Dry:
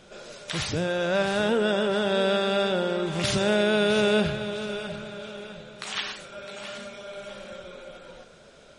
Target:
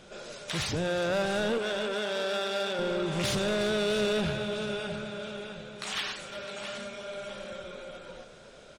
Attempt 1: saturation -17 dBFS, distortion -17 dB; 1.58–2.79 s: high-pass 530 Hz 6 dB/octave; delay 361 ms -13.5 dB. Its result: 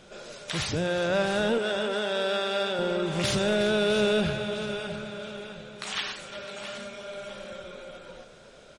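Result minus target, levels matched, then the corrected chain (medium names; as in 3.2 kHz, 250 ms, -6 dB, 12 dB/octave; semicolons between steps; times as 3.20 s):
saturation: distortion -8 dB
saturation -24.5 dBFS, distortion -9 dB; 1.58–2.79 s: high-pass 530 Hz 6 dB/octave; delay 361 ms -13.5 dB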